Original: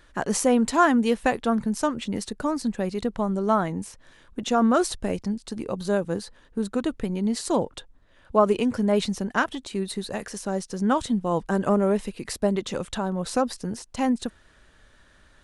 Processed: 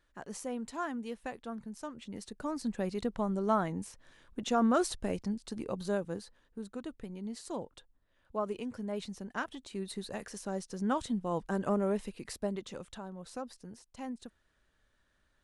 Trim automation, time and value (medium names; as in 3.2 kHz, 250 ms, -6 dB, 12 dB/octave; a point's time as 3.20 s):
1.84 s -18 dB
2.78 s -7 dB
5.76 s -7 dB
6.65 s -15.5 dB
9.05 s -15.5 dB
9.99 s -9 dB
12.15 s -9 dB
13.16 s -17.5 dB